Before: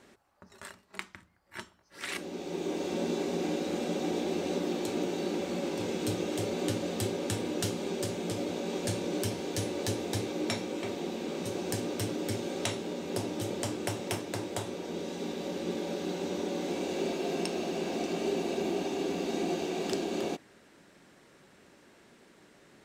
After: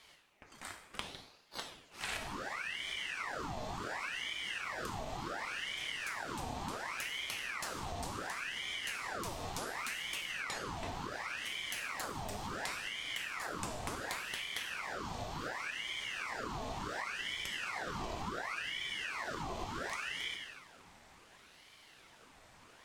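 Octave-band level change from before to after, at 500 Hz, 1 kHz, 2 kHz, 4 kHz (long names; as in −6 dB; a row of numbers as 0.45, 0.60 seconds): −15.0, −0.5, +4.5, 0.0 decibels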